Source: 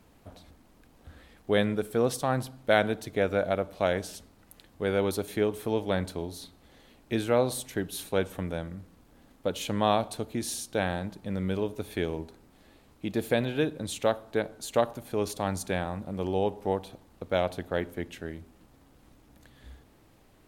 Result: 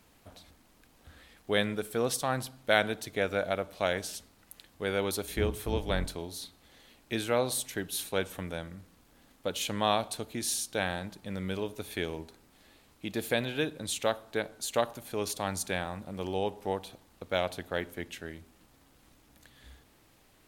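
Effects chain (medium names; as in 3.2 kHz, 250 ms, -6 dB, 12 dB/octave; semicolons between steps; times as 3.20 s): 5.24–6.16 s: octave divider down 2 oct, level +4 dB; tilt shelf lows -4.5 dB, about 1.2 kHz; trim -1 dB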